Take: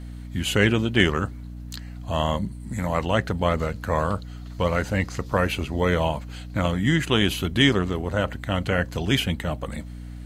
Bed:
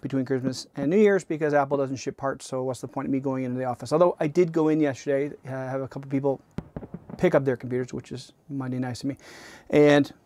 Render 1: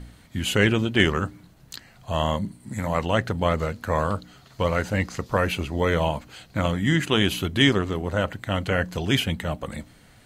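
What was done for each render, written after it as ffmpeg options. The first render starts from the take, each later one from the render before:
-af "bandreject=f=60:t=h:w=4,bandreject=f=120:t=h:w=4,bandreject=f=180:t=h:w=4,bandreject=f=240:t=h:w=4,bandreject=f=300:t=h:w=4"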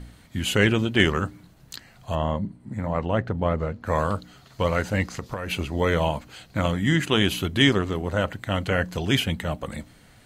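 -filter_complex "[0:a]asplit=3[a][b][c];[a]afade=t=out:st=2.14:d=0.02[d];[b]lowpass=f=1k:p=1,afade=t=in:st=2.14:d=0.02,afade=t=out:st=3.85:d=0.02[e];[c]afade=t=in:st=3.85:d=0.02[f];[d][e][f]amix=inputs=3:normalize=0,asettb=1/sr,asplit=3[g][h][i];[g]atrim=end=5.064[j];[h]atrim=start=5.06:end=5.51,asetpts=PTS-STARTPTS,afade=t=in:d=0.004:c=qsin,afade=t=out:st=0.446:d=0.004:c=qsin,acompressor=threshold=-25dB:ratio=12:attack=3.2:release=140:knee=1:detection=peak[k];[i]atrim=start=5.506[l];[j][k]acrossfade=d=0.004:c1=hsin:c2=qsin[m];[m][l]acrossfade=d=0.004:c1=qsin:c2=hsin"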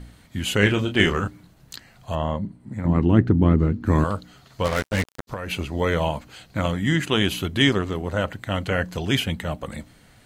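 -filter_complex "[0:a]asettb=1/sr,asplit=3[a][b][c];[a]atrim=end=0.594[d];[b]atrim=start=0.59:end=1.28,asetpts=PTS-STARTPTS,afade=t=in:d=0.004:c=qsin,afade=t=out:st=0.686:d=0.004:c=qsin,asplit=2[e][f];[f]adelay=29,volume=-6.5dB[g];[e][g]amix=inputs=2:normalize=0,atrim=end_sample=30429[h];[c]atrim=start=1.276[i];[d][h]acrossfade=d=0.004:c1=hsin:c2=qsin[j];[j][i]acrossfade=d=0.004:c1=qsin:c2=hsin,asettb=1/sr,asplit=3[k][l][m];[k]atrim=end=2.854[n];[l]atrim=start=2.85:end=4.04,asetpts=PTS-STARTPTS,afade=t=in:d=0.004:c=qsin,afade=t=out:st=1.186:d=0.004:c=qsin,lowshelf=f=430:t=q:w=3:g=8.5[o];[m]atrim=start=4.036[p];[n][o]acrossfade=d=0.004:c1=hsin:c2=qsin[q];[q][p]acrossfade=d=0.004:c1=qsin:c2=hsin,asplit=3[r][s][t];[r]afade=t=out:st=4.64:d=0.02[u];[s]acrusher=bits=3:mix=0:aa=0.5,afade=t=in:st=4.64:d=0.02,afade=t=out:st=5.27:d=0.02[v];[t]afade=t=in:st=5.27:d=0.02[w];[u][v][w]amix=inputs=3:normalize=0"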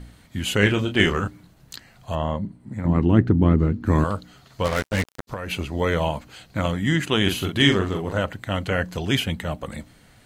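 -filter_complex "[0:a]asettb=1/sr,asplit=3[a][b][c];[a]atrim=end=7.224[d];[b]atrim=start=7.22:end=8.19,asetpts=PTS-STARTPTS,afade=t=in:d=0.004:c=qsin,afade=t=out:st=0.966:d=0.004:c=qsin,asplit=2[e][f];[f]adelay=42,volume=-5dB[g];[e][g]amix=inputs=2:normalize=0,atrim=end_sample=42777[h];[c]atrim=start=8.186[i];[d][h]acrossfade=d=0.004:c1=hsin:c2=qsin[j];[j][i]acrossfade=d=0.004:c1=qsin:c2=hsin"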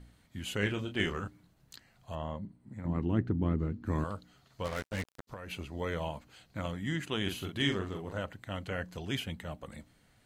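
-af "volume=-13dB"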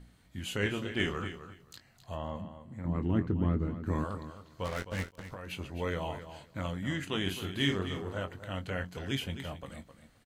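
-filter_complex "[0:a]asplit=2[a][b];[b]adelay=22,volume=-9.5dB[c];[a][c]amix=inputs=2:normalize=0,aecho=1:1:261|522:0.266|0.0426"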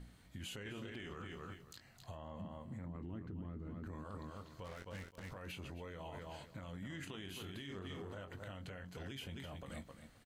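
-af "acompressor=threshold=-38dB:ratio=4,alimiter=level_in=14dB:limit=-24dB:level=0:latency=1:release=65,volume=-14dB"

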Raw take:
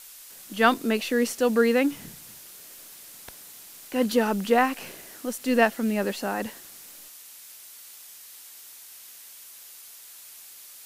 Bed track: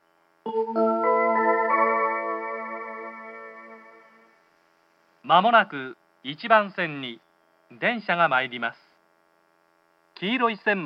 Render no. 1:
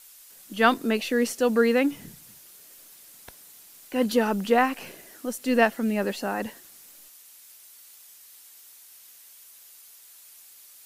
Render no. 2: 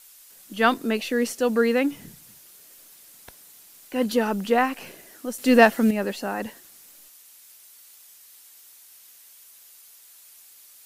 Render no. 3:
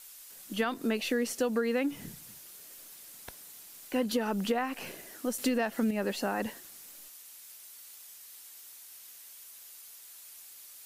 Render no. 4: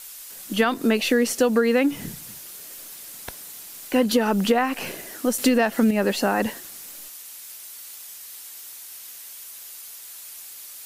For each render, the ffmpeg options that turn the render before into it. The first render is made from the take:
-af "afftdn=nr=6:nf=-47"
-filter_complex "[0:a]asettb=1/sr,asplit=3[a][b][c];[a]atrim=end=5.384[d];[b]atrim=start=5.38:end=5.91,asetpts=PTS-STARTPTS,afade=t=in:d=0.004:c=qsin,afade=t=out:st=0.526:d=0.004:c=qsin,acontrast=69[e];[c]atrim=start=5.906[f];[d][e]acrossfade=d=0.004:c1=hsin:c2=qsin[g];[g][f]acrossfade=d=0.004:c1=qsin:c2=hsin"
-af "alimiter=limit=-12.5dB:level=0:latency=1:release=283,acompressor=threshold=-26dB:ratio=6"
-af "volume=10dB"

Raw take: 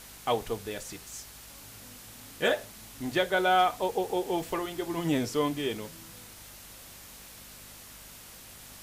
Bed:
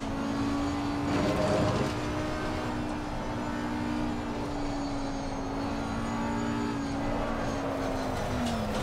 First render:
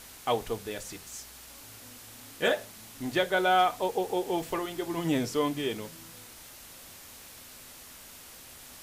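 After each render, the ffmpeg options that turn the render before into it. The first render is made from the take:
-af "bandreject=f=50:t=h:w=4,bandreject=f=100:t=h:w=4,bandreject=f=150:t=h:w=4,bandreject=f=200:t=h:w=4"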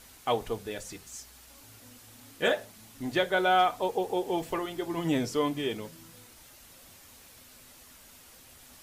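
-af "afftdn=nr=6:nf=-49"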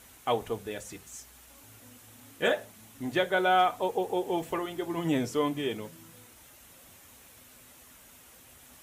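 -af "highpass=45,equalizer=f=4.7k:t=o:w=0.55:g=-6.5"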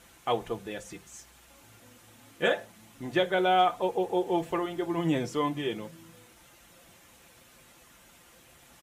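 -af "highshelf=f=9.2k:g=-11,aecho=1:1:5.8:0.43"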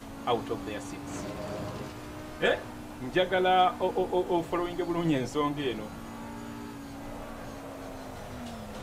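-filter_complex "[1:a]volume=-10dB[a];[0:a][a]amix=inputs=2:normalize=0"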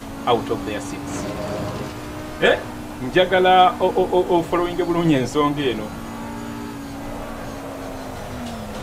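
-af "volume=10dB"

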